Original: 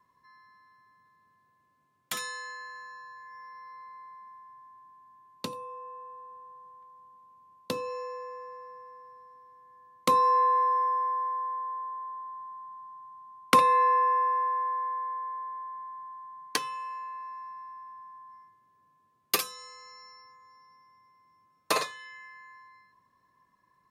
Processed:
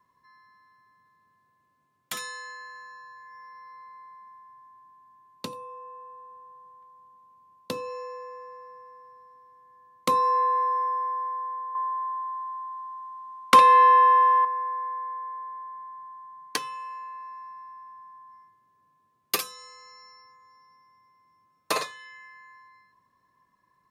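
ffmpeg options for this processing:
-filter_complex "[0:a]asettb=1/sr,asplit=3[s0][s1][s2];[s0]atrim=end=11.754[s3];[s1]atrim=start=11.75:end=14.45,asetpts=PTS-STARTPTS,afade=t=in:d=0.004:c=qsin,afade=t=out:st=2.696:d=0.004:c=qsin,asplit=2[s4][s5];[s5]highpass=f=720:p=1,volume=5.01,asoftclip=type=tanh:threshold=0.75[s6];[s4][s6]amix=inputs=2:normalize=0,lowpass=f=5500:p=1,volume=0.501[s7];[s2]atrim=start=14.446[s8];[s3][s7]acrossfade=d=0.004:c1=hsin:c2=qsin[s9];[s9][s8]acrossfade=d=0.004:c1=qsin:c2=hsin"

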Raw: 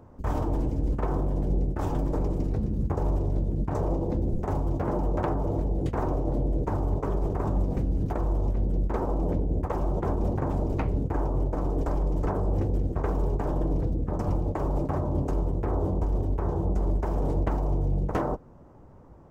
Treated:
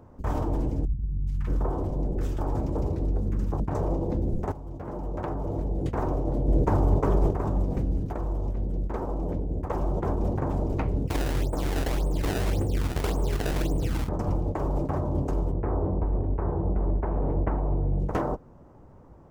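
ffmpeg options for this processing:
-filter_complex "[0:a]asettb=1/sr,asplit=3[s0][s1][s2];[s0]atrim=end=0.854[s3];[s1]atrim=start=0.85:end=3.6,asetpts=PTS-STARTPTS,afade=t=in:d=0.004:c=qsin,afade=t=out:st=2.746:d=0.004:c=qsin,acrossover=split=170|1500[s4][s5][s6];[s6]adelay=420[s7];[s5]adelay=620[s8];[s4][s8][s7]amix=inputs=3:normalize=0,atrim=end_sample=121275[s9];[s2]atrim=start=3.596[s10];[s3][s9]acrossfade=d=0.004:c1=hsin:c2=qsin[s11];[s11][s10]acrossfade=d=0.004:c1=qsin:c2=hsin,asettb=1/sr,asplit=3[s12][s13][s14];[s12]atrim=end=6.484[s15];[s13]atrim=start=6.48:end=7.31,asetpts=PTS-STARTPTS,afade=t=in:d=0.004:c=qsin,afade=t=out:st=0.826:d=0.004:c=qsin,acontrast=31[s16];[s14]atrim=start=7.306[s17];[s15][s16]acrossfade=d=0.004:c1=hsin:c2=qsin[s18];[s18][s17]acrossfade=d=0.004:c1=qsin:c2=hsin,asplit=3[s19][s20][s21];[s19]afade=t=out:st=11.07:d=0.02[s22];[s20]acrusher=samples=23:mix=1:aa=0.000001:lfo=1:lforange=36.8:lforate=1.8,afade=t=in:st=11.07:d=0.02,afade=t=out:st=14.07:d=0.02[s23];[s21]afade=t=in:st=14.07:d=0.02[s24];[s22][s23][s24]amix=inputs=3:normalize=0,asettb=1/sr,asplit=3[s25][s26][s27];[s25]atrim=end=15.524[s28];[s26]atrim=start=15.52:end=18,asetpts=PTS-STARTPTS,afade=t=in:d=0.004:c=qsin,afade=t=out:st=2.476:d=0.004:c=qsin,lowpass=f=2300:w=0.5412,lowpass=f=2300:w=1.3066[s29];[s27]atrim=start=17.996[s30];[s28][s29]acrossfade=d=0.004:c1=hsin:c2=qsin[s31];[s31][s30]acrossfade=d=0.004:c1=qsin:c2=hsin,asplit=4[s32][s33][s34][s35];[s32]atrim=end=4.52,asetpts=PTS-STARTPTS,afade=t=out:st=4.516:d=0.004:c=hsin:silence=0.188365[s36];[s33]atrim=start=4.52:end=8.002,asetpts=PTS-STARTPTS,afade=t=in:d=1.46:silence=0.188365[s37];[s34]atrim=start=7.998:end=9.672,asetpts=PTS-STARTPTS,volume=0.708[s38];[s35]atrim=start=9.668[s39];[s36][s37]concat=n=2:v=0:a=1[s40];[s40][s38]acrossfade=d=0.004:c1=hsin:c2=hsin[s41];[s41][s39]acrossfade=d=0.004:c1=hsin:c2=hsin"

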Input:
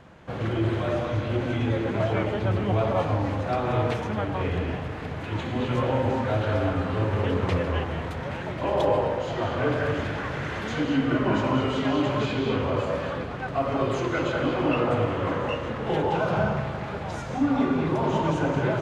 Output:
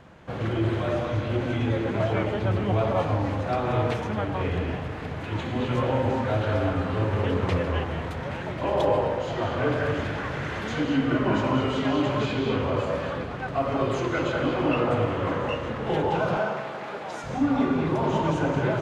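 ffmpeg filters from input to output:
-filter_complex "[0:a]asettb=1/sr,asplit=3[s0][s1][s2];[s0]atrim=end=16.374[s3];[s1]atrim=start=16.37:end=17.24,asetpts=PTS-STARTPTS,afade=t=in:d=0.004:c=qsin,afade=t=out:st=0.866:d=0.004:c=qsin,highpass=310[s4];[s2]atrim=start=17.236[s5];[s3][s4]acrossfade=d=0.004:c1=hsin:c2=qsin[s6];[s6][s5]acrossfade=d=0.004:c1=qsin:c2=hsin"

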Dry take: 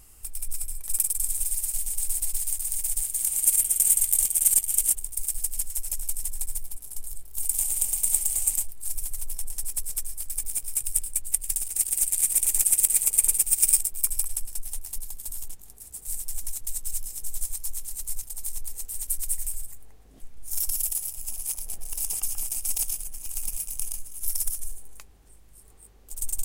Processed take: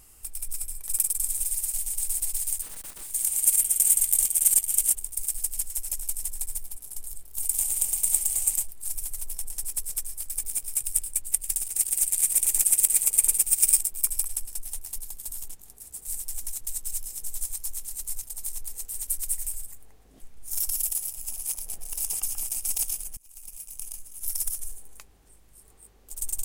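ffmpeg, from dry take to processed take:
-filter_complex "[0:a]asettb=1/sr,asplit=3[s0][s1][s2];[s0]atrim=end=2.624[s3];[s1]atrim=start=2.62:end=3.11,asetpts=PTS-STARTPTS,afade=t=in:d=0.004:c=qsin,afade=t=out:st=0.486:d=0.004:c=qsin,aeval=exprs='(tanh(70.8*val(0)+0.6)-tanh(0.6))/70.8':c=same[s4];[s2]atrim=start=3.106[s5];[s3][s4]acrossfade=d=0.004:c1=hsin:c2=qsin[s6];[s6][s5]acrossfade=d=0.004:c1=qsin:c2=hsin,asplit=2[s7][s8];[s7]atrim=end=23.17,asetpts=PTS-STARTPTS,afade=t=out:st=23.166:d=0.004:c=hsin:silence=0.0707946[s9];[s8]atrim=start=23.17,asetpts=PTS-STARTPTS,afade=t=in:d=1.35:silence=0.0707946[s10];[s9][s10]concat=n=2:v=0:a=1,lowshelf=f=130:g=-4.5"

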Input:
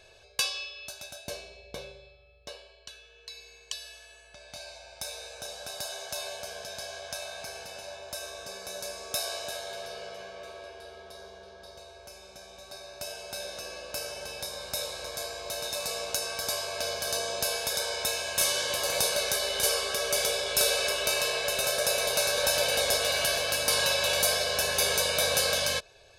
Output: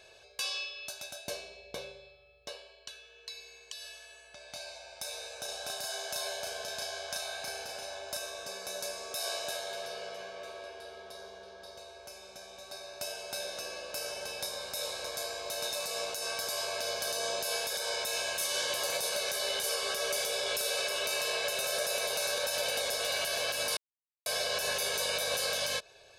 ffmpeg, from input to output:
-filter_complex "[0:a]asettb=1/sr,asplit=3[s0][s1][s2];[s0]atrim=end=5.454[s3];[s1]atrim=start=5.45:end=8.17,asetpts=PTS-STARTPTS,afade=t=in:d=0.004:c=qsin,afade=t=out:st=2.716:d=0.004:c=qsin,asplit=2[s4][s5];[s5]adelay=35,volume=0.631[s6];[s4][s6]amix=inputs=2:normalize=0,atrim=end_sample=119952[s7];[s2]atrim=start=8.166[s8];[s3][s7]acrossfade=d=0.004:c1=hsin:c2=qsin[s9];[s9][s8]acrossfade=d=0.004:c1=qsin:c2=hsin,asplit=3[s10][s11][s12];[s10]atrim=end=23.77,asetpts=PTS-STARTPTS,afade=t=out:st=23.766:d=0.004:c=hsin[s13];[s11]atrim=start=23.77:end=24.26,asetpts=PTS-STARTPTS,volume=0[s14];[s12]atrim=start=24.26,asetpts=PTS-STARTPTS,afade=t=in:d=0.004:c=hsin[s15];[s13][s14][s15]concat=n=3:v=0:a=1,lowshelf=f=120:g=-11.5,alimiter=limit=0.0794:level=0:latency=1:release=133"

